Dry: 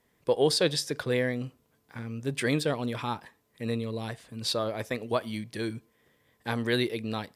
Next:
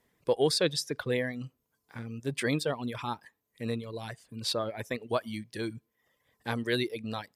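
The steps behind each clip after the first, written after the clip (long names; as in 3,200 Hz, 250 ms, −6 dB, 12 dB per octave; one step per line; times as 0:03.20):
reverb reduction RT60 0.8 s
level −1.5 dB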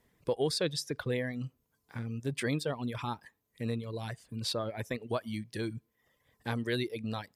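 low-shelf EQ 160 Hz +7.5 dB
downward compressor 1.5 to 1, threshold −36 dBFS, peak gain reduction 6.5 dB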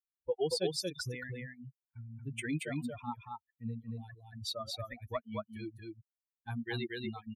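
spectral dynamics exaggerated over time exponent 3
single-tap delay 230 ms −3 dB
level +1 dB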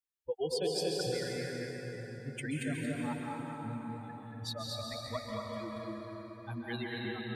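convolution reverb RT60 4.6 s, pre-delay 123 ms, DRR −2.5 dB
level −2.5 dB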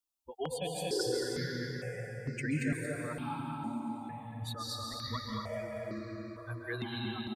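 repeating echo 314 ms, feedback 54%, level −17 dB
step-sequenced phaser 2.2 Hz 480–3,300 Hz
level +4.5 dB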